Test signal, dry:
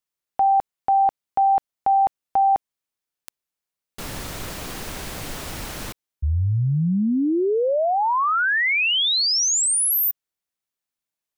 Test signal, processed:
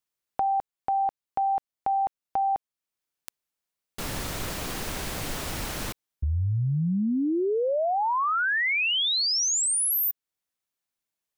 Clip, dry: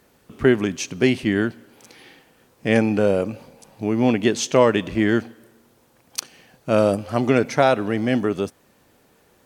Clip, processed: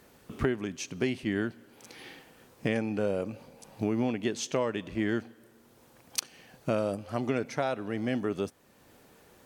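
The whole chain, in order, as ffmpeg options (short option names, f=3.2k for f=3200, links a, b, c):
-af "acompressor=threshold=-23dB:ratio=6:attack=8.4:release=905:knee=1:detection=rms"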